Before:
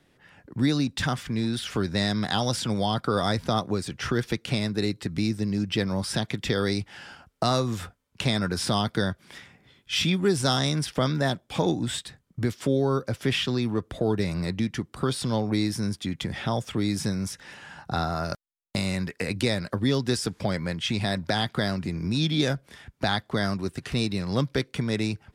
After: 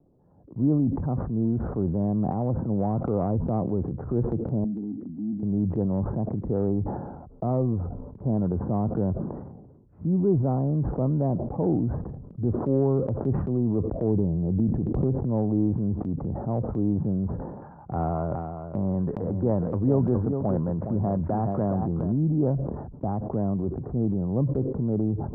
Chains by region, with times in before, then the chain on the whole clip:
4.64–5.43 vowel filter i + bell 210 Hz +8.5 dB 0.34 oct
14.04–15.29 bell 1300 Hz -13 dB 1.1 oct + backwards sustainer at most 28 dB/s
17.62–22.12 bell 1600 Hz +11.5 dB 1.8 oct + echo 0.416 s -9 dB
whole clip: Bessel low-pass 510 Hz, order 8; transient shaper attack -4 dB, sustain +6 dB; sustainer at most 44 dB/s; gain +2.5 dB

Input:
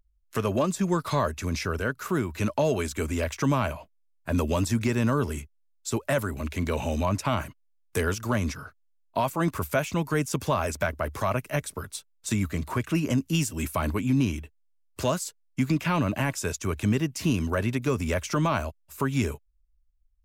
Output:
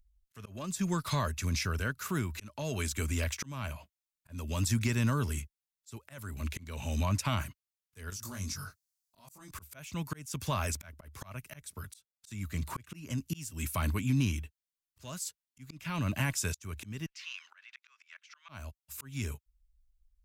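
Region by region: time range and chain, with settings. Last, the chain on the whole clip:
8.1–9.51 resonant high shelf 3900 Hz +7.5 dB, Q 1.5 + compressor, threshold -34 dBFS + doubler 21 ms -2.5 dB
17.06–18.49 HPF 1300 Hz 24 dB/oct + air absorption 210 m
whole clip: passive tone stack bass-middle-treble 5-5-5; auto swell 0.413 s; low shelf 350 Hz +7.5 dB; gain +6.5 dB

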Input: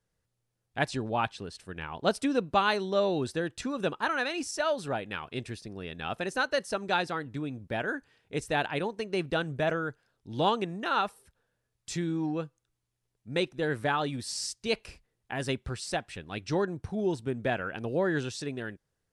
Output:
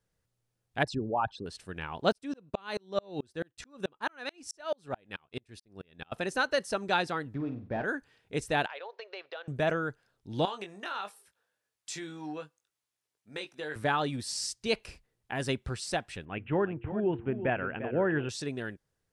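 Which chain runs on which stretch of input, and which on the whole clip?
0.83–1.46 formant sharpening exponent 2 + bell 2300 Hz -7.5 dB 0.91 oct
2.12–6.12 gate -46 dBFS, range -12 dB + dB-ramp tremolo swelling 4.6 Hz, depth 37 dB
7.34–7.84 CVSD 32 kbps + LPF 1500 Hz + flutter echo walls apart 8.5 m, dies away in 0.33 s
8.66–9.48 elliptic band-pass 510–4600 Hz + compressor 4:1, threshold -39 dBFS
10.45–13.76 HPF 860 Hz 6 dB/oct + compressor 3:1, threshold -35 dBFS + doubler 20 ms -7 dB
16.25–18.29 steep low-pass 3000 Hz 72 dB/oct + de-hum 115.4 Hz, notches 4 + echo 0.348 s -11.5 dB
whole clip: dry

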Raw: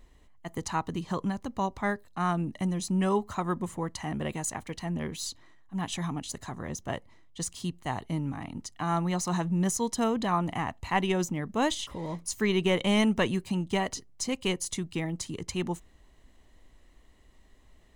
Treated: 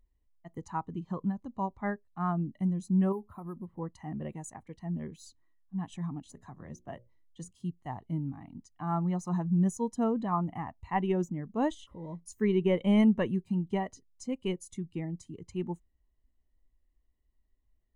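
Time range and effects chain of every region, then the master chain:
3.12–3.79 high shelf 2600 Hz -10.5 dB + compressor 2.5:1, threshold -32 dBFS + careless resampling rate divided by 4×, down filtered, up hold
6.25–7.51 notches 60/120/180/240/300/360/420/480/540/600 Hz + three-band squash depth 40%
whole clip: dynamic EQ 4300 Hz, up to -5 dB, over -49 dBFS, Q 0.93; spectral expander 1.5:1; gain -1.5 dB

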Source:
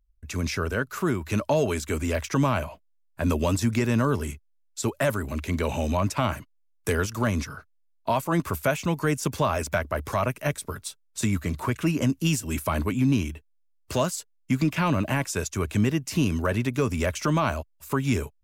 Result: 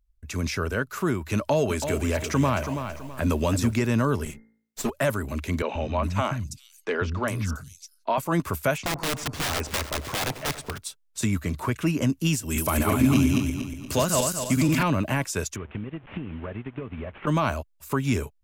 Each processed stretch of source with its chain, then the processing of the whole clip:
1.37–3.73 upward compressor, threshold -26 dBFS + lo-fi delay 0.328 s, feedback 35%, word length 8-bit, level -8 dB
4.25–4.9 minimum comb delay 4.8 ms + de-hum 55.64 Hz, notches 38
5.62–8.18 high shelf 12000 Hz -11 dB + three bands offset in time mids, lows, highs 0.13/0.41 s, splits 230/4700 Hz
8.78–10.78 Bessel low-pass 5800 Hz + wrapped overs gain 21 dB + split-band echo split 1100 Hz, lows 95 ms, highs 0.308 s, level -13 dB
12.44–14.83 regenerating reverse delay 0.118 s, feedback 63%, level -1 dB + high shelf 6200 Hz +8.5 dB
15.56–17.27 delta modulation 16 kbps, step -33.5 dBFS + transient shaper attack +10 dB, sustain -8 dB + compressor 5:1, threshold -31 dBFS
whole clip: dry

